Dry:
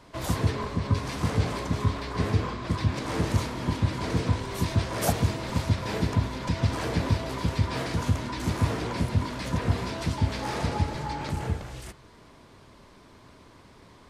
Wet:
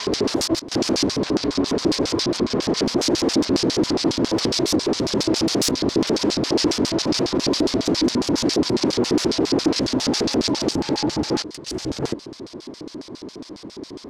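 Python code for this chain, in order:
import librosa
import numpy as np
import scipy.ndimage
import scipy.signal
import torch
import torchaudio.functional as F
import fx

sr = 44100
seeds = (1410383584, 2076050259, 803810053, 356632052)

y = fx.block_reorder(x, sr, ms=119.0, group=6)
y = fx.fold_sine(y, sr, drive_db=19, ceiling_db=-10.0)
y = fx.filter_lfo_bandpass(y, sr, shape='square', hz=7.3, low_hz=320.0, high_hz=5000.0, q=2.9)
y = fx.peak_eq(y, sr, hz=2300.0, db=-3.0, octaves=2.1)
y = F.gain(torch.from_numpy(y), 4.0).numpy()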